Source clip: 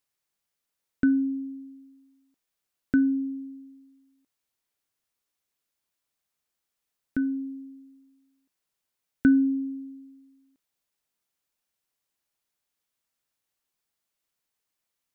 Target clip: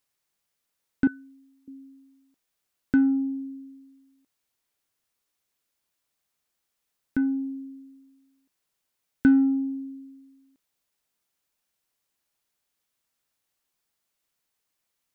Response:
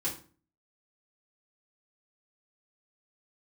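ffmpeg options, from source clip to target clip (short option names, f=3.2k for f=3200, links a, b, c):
-filter_complex "[0:a]asettb=1/sr,asplit=3[a][b][c];[a]atrim=end=1.074[d];[b]atrim=start=1.07:end=1.68,asetpts=PTS-STARTPTS,afade=t=in:d=0.004:c=qsin,afade=t=out:st=0.606:d=0.004:c=qsin,highpass=f=570:w=0.5412,highpass=f=570:w=1.3066[e];[c]atrim=start=1.676[f];[d][e]acrossfade=d=0.004:c1=hsin:c2=qsin[g];[g][f]acrossfade=d=0.004:c1=qsin:c2=hsin,asplit=2[h][i];[i]asoftclip=type=tanh:threshold=-26dB,volume=-7dB[j];[h][j]amix=inputs=2:normalize=0"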